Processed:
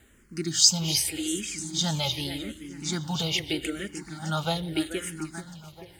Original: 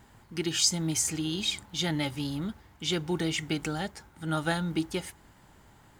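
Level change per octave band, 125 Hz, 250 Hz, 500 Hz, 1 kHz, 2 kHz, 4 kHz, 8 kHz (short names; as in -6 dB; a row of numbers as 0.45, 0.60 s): +1.5, 0.0, +0.5, +1.5, -0.5, +5.0, +5.0 dB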